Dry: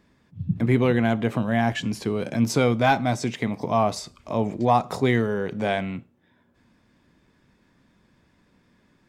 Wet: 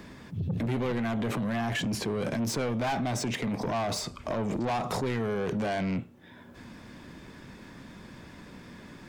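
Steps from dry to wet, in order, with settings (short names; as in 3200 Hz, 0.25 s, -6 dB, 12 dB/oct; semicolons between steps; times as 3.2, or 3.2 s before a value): in parallel at 0 dB: negative-ratio compressor -32 dBFS, ratio -1; on the sum: soft clip -21.5 dBFS, distortion -8 dB; three-band squash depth 40%; gain -4 dB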